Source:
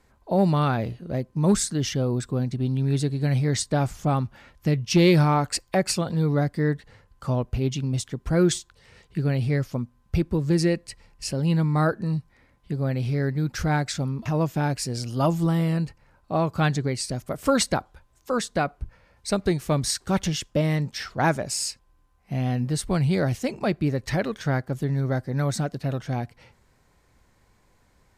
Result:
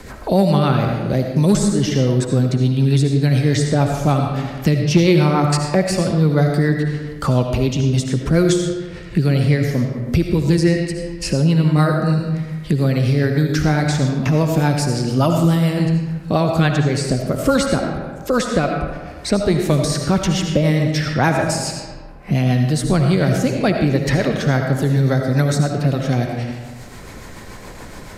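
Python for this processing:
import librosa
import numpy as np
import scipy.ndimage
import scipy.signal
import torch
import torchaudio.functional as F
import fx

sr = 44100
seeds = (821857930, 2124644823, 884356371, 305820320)

y = fx.rotary(x, sr, hz=7.0)
y = fx.rev_freeverb(y, sr, rt60_s=1.0, hf_ratio=0.65, predelay_ms=35, drr_db=3.5)
y = fx.band_squash(y, sr, depth_pct=70)
y = y * 10.0 ** (8.0 / 20.0)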